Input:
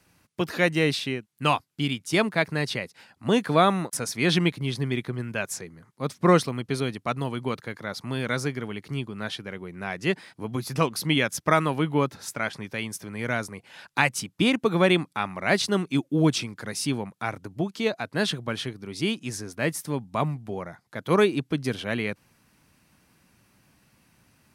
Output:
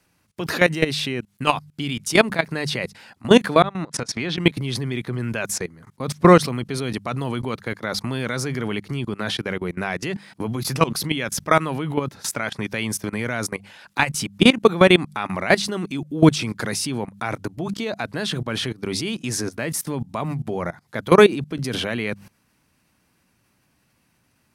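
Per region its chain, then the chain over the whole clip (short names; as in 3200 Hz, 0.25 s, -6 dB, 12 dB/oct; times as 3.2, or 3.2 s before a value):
3.62–4.38 LPF 5000 Hz + compressor 20:1, threshold -34 dBFS
whole clip: notches 50/100/150/200 Hz; level quantiser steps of 20 dB; maximiser +15.5 dB; gain -1 dB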